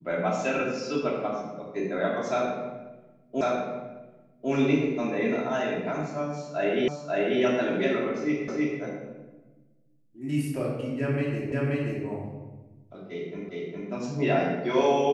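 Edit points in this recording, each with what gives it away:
3.41 s: repeat of the last 1.1 s
6.88 s: repeat of the last 0.54 s
8.48 s: repeat of the last 0.32 s
11.52 s: repeat of the last 0.53 s
13.49 s: repeat of the last 0.41 s

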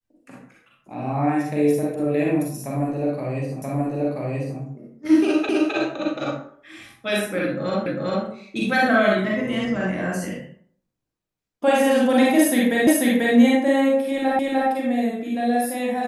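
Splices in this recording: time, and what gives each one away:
3.62 s: repeat of the last 0.98 s
5.49 s: repeat of the last 0.26 s
7.86 s: repeat of the last 0.4 s
12.87 s: repeat of the last 0.49 s
14.39 s: repeat of the last 0.3 s

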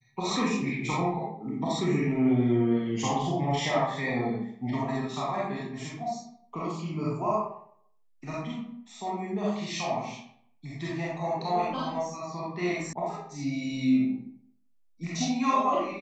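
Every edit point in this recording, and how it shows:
12.93 s: sound stops dead

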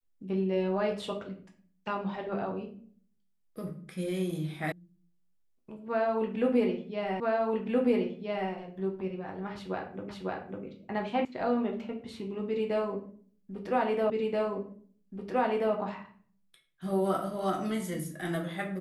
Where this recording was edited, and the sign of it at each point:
4.72 s: sound stops dead
7.20 s: repeat of the last 1.32 s
10.09 s: repeat of the last 0.55 s
11.25 s: sound stops dead
14.10 s: repeat of the last 1.63 s

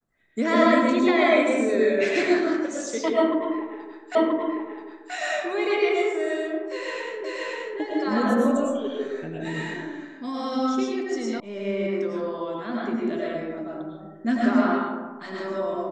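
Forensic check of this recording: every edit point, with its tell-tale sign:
4.15 s: repeat of the last 0.98 s
7.24 s: repeat of the last 0.53 s
11.40 s: sound stops dead

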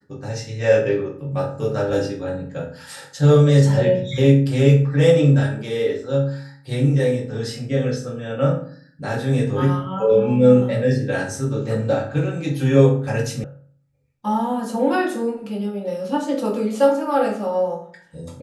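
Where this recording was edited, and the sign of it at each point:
13.44 s: sound stops dead

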